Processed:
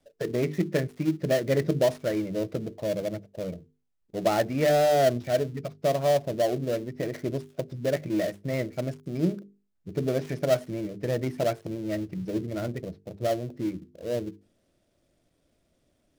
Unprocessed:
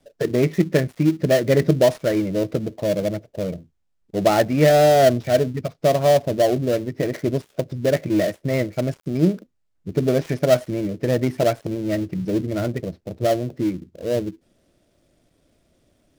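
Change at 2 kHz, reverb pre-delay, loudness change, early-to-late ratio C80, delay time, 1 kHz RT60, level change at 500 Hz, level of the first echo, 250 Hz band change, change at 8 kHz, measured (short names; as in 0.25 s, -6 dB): -7.0 dB, none, -7.5 dB, none, none, none, -7.0 dB, none, -8.0 dB, -7.0 dB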